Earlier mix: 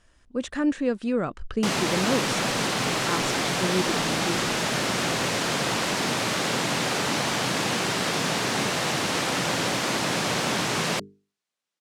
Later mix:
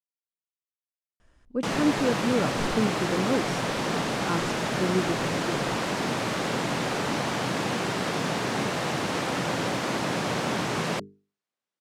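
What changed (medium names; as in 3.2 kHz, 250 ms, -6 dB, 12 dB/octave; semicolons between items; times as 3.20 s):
speech: entry +1.20 s; master: add treble shelf 2.1 kHz -8.5 dB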